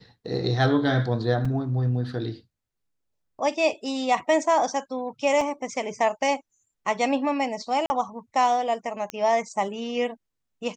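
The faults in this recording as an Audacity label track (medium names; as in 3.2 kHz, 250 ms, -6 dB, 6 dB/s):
1.450000	1.450000	dropout 4.2 ms
5.410000	5.410000	dropout 2.8 ms
7.860000	7.900000	dropout 40 ms
9.100000	9.100000	pop -15 dBFS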